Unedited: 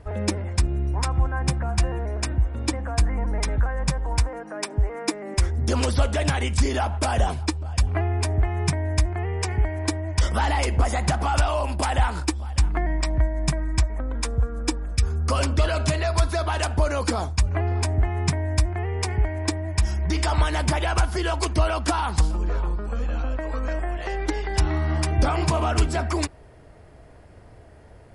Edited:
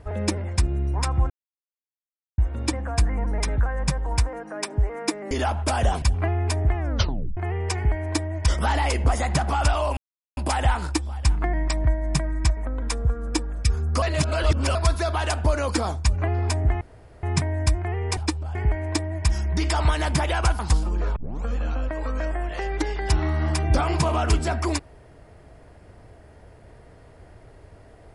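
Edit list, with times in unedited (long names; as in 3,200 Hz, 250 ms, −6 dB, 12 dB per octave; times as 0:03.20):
0:01.30–0:02.38: silence
0:05.31–0:06.66: remove
0:07.37–0:07.75: move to 0:19.08
0:08.49: tape stop 0.61 s
0:11.70: splice in silence 0.40 s
0:15.35–0:16.08: reverse
0:18.14: splice in room tone 0.42 s
0:21.12–0:22.07: remove
0:22.64: tape start 0.28 s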